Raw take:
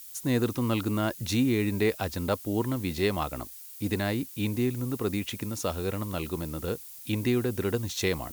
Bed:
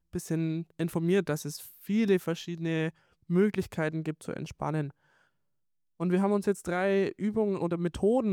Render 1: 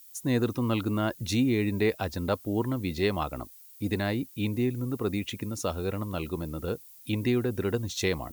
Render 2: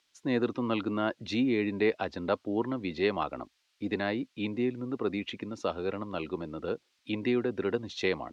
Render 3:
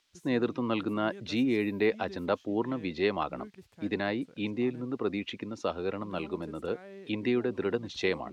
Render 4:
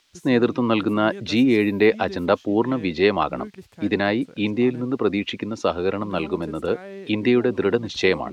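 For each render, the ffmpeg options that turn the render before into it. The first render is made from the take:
-af "afftdn=nr=9:nf=-45"
-filter_complex "[0:a]lowpass=5.9k,acrossover=split=200 4600:gain=0.178 1 0.126[a][b][c];[a][b][c]amix=inputs=3:normalize=0"
-filter_complex "[1:a]volume=-21dB[a];[0:a][a]amix=inputs=2:normalize=0"
-af "volume=10dB"

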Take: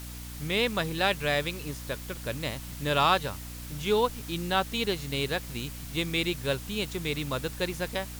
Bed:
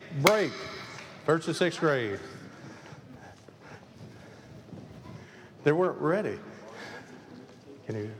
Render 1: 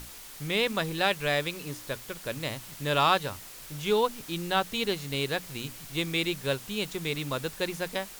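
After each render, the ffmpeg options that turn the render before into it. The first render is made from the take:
-af "bandreject=f=60:t=h:w=6,bandreject=f=120:t=h:w=6,bandreject=f=180:t=h:w=6,bandreject=f=240:t=h:w=6,bandreject=f=300:t=h:w=6"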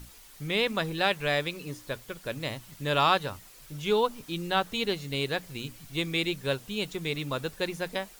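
-af "afftdn=nr=8:nf=-46"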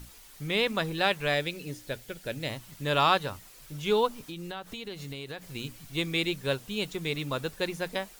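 -filter_complex "[0:a]asettb=1/sr,asplit=3[a][b][c];[a]atrim=end=1.344[d];[b]atrim=start=1.34:end=2.5,asetpts=PTS-STARTPTS,afade=t=in:d=0.004:c=qsin,afade=t=out:st=1.156:d=0.004:c=qsin,equalizer=f=1.1k:t=o:w=0.36:g=-11.5[e];[c]atrim=start=2.496[f];[d][e]acrossfade=d=0.004:c1=hsin:c2=qsin[g];[g][f]acrossfade=d=0.004:c1=qsin:c2=hsin,asettb=1/sr,asplit=3[h][i][j];[h]atrim=end=4.114[k];[i]atrim=start=4.11:end=5.42,asetpts=PTS-STARTPTS,afade=t=in:d=0.004:c=qsin,afade=t=out:st=1.306:d=0.004:c=qsin,acompressor=threshold=-35dB:ratio=6:attack=3.2:release=140:knee=1:detection=peak[l];[j]atrim=start=5.416[m];[k][l]acrossfade=d=0.004:c1=hsin:c2=qsin[n];[n][m]acrossfade=d=0.004:c1=qsin:c2=hsin"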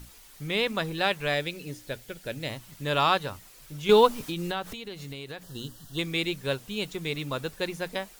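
-filter_complex "[0:a]asettb=1/sr,asplit=3[a][b][c];[a]atrim=end=3.894[d];[b]atrim=start=3.89:end=4.73,asetpts=PTS-STARTPTS,afade=t=in:d=0.004:c=qsin,afade=t=out:st=0.836:d=0.004:c=qsin,acontrast=89[e];[c]atrim=start=4.726[f];[d][e]acrossfade=d=0.004:c1=hsin:c2=qsin[g];[g][f]acrossfade=d=0.004:c1=qsin:c2=hsin,asettb=1/sr,asplit=3[h][i][j];[h]atrim=end=5.434[k];[i]atrim=start=5.43:end=5.99,asetpts=PTS-STARTPTS,afade=t=in:d=0.004:c=qsin,afade=t=out:st=0.556:d=0.004:c=qsin,asuperstop=centerf=2300:order=8:qfactor=2.5[l];[j]atrim=start=5.986[m];[k][l]acrossfade=d=0.004:c1=hsin:c2=qsin[n];[n][m]acrossfade=d=0.004:c1=qsin:c2=hsin"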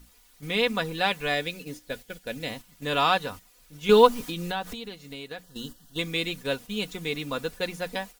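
-af "aecho=1:1:4.1:0.55,agate=range=-8dB:threshold=-40dB:ratio=16:detection=peak"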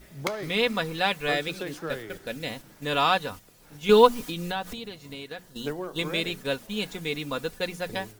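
-filter_complex "[1:a]volume=-9dB[a];[0:a][a]amix=inputs=2:normalize=0"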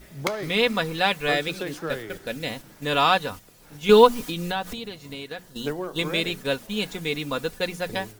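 -af "volume=3dB,alimiter=limit=-3dB:level=0:latency=1"

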